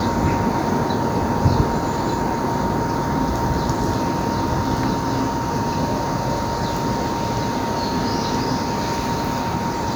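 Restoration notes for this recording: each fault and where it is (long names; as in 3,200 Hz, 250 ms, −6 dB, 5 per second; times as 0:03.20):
whistle 930 Hz −26 dBFS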